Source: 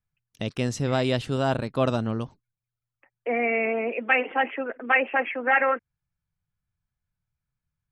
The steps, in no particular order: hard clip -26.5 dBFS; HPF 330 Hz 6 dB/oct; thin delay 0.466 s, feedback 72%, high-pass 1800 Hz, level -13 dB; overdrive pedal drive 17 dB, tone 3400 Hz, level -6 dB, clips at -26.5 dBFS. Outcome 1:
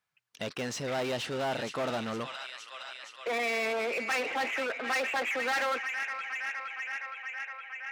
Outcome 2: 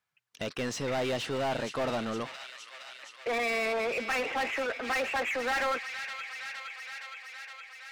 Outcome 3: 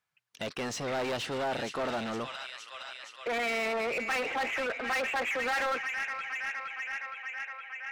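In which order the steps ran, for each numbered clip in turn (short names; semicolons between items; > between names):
thin delay > overdrive pedal > hard clip > HPF; HPF > hard clip > thin delay > overdrive pedal; thin delay > hard clip > HPF > overdrive pedal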